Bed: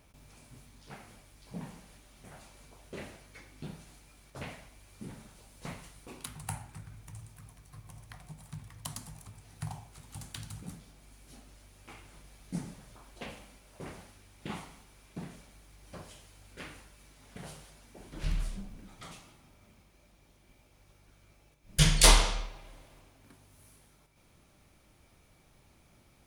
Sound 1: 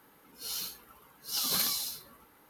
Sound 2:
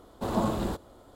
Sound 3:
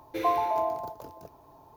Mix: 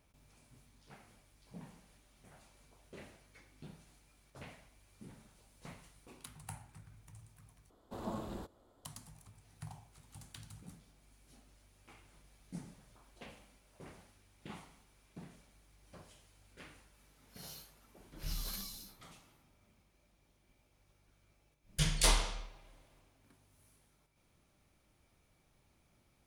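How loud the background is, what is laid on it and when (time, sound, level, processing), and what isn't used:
bed −9 dB
0:07.70: overwrite with 2 −14 dB
0:16.94: mix in 1 −15 dB
not used: 3

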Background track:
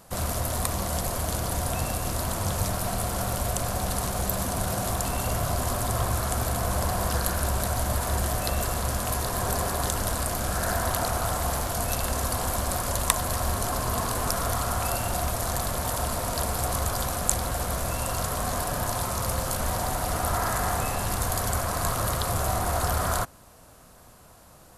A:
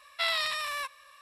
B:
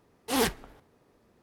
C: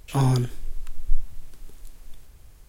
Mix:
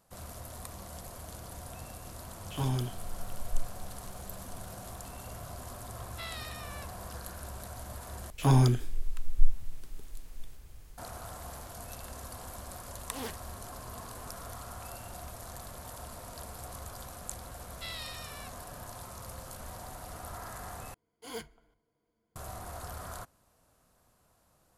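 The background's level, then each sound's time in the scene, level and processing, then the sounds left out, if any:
background track −16.5 dB
0:02.43: mix in C −10.5 dB + parametric band 3,100 Hz +12 dB 0.27 octaves
0:05.99: mix in A −14 dB
0:08.30: overwrite with C −1.5 dB
0:12.83: mix in B −14.5 dB
0:17.62: mix in A −17 dB + tilt shelving filter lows −8 dB, about 1,500 Hz
0:20.94: overwrite with B −18 dB + EQ curve with evenly spaced ripples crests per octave 1.8, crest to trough 13 dB

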